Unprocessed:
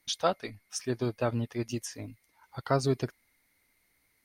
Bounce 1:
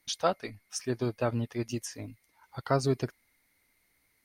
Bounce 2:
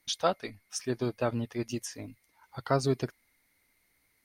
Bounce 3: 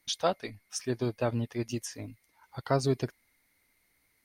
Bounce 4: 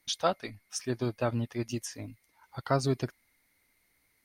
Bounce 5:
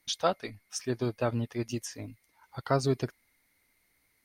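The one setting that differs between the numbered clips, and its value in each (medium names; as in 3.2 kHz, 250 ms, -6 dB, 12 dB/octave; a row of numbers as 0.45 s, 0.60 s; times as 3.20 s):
dynamic bell, frequency: 3.5 kHz, 110 Hz, 1.3 kHz, 440 Hz, 9.8 kHz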